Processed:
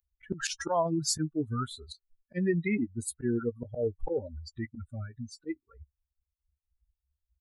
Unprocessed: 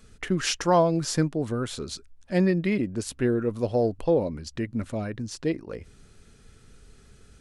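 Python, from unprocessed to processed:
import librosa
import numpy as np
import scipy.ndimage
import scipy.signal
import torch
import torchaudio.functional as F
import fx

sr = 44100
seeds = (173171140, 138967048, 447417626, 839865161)

p1 = fx.bin_expand(x, sr, power=3.0)
p2 = fx.auto_swell(p1, sr, attack_ms=171.0)
p3 = fx.over_compress(p2, sr, threshold_db=-34.0, ratio=-0.5)
p4 = p2 + (p3 * 10.0 ** (-0.5 / 20.0))
y = fx.doubler(p4, sr, ms=13.0, db=-13)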